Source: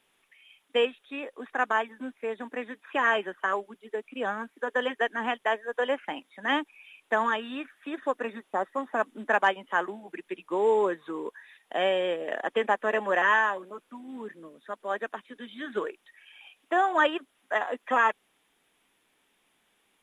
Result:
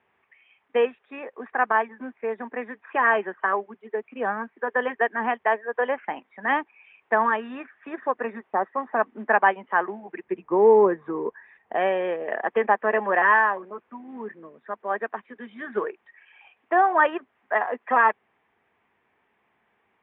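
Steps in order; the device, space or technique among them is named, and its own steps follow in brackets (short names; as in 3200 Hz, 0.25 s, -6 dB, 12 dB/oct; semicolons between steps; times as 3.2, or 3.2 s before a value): 10.24–11.75 tilt -3 dB/oct; bass cabinet (speaker cabinet 77–2000 Hz, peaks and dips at 92 Hz +7 dB, 170 Hz -5 dB, 290 Hz -10 dB, 550 Hz -5 dB, 1400 Hz -5 dB); gain +6.5 dB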